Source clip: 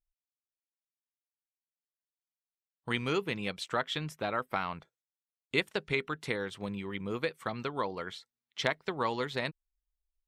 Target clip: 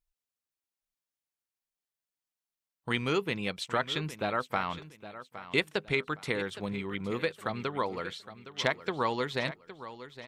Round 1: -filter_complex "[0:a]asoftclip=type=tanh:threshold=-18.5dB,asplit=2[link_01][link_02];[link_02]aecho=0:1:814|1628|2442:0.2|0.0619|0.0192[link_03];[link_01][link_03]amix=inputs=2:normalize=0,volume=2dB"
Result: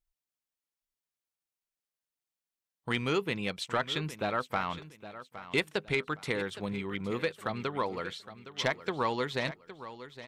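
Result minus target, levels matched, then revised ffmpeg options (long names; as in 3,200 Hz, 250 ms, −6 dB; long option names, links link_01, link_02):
soft clipping: distortion +14 dB
-filter_complex "[0:a]asoftclip=type=tanh:threshold=-9.5dB,asplit=2[link_01][link_02];[link_02]aecho=0:1:814|1628|2442:0.2|0.0619|0.0192[link_03];[link_01][link_03]amix=inputs=2:normalize=0,volume=2dB"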